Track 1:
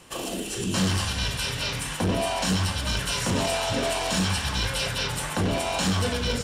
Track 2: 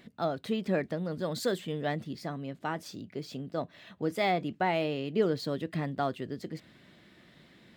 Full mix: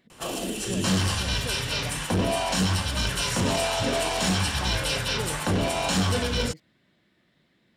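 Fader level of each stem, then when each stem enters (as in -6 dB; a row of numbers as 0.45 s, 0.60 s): +0.5 dB, -9.0 dB; 0.10 s, 0.00 s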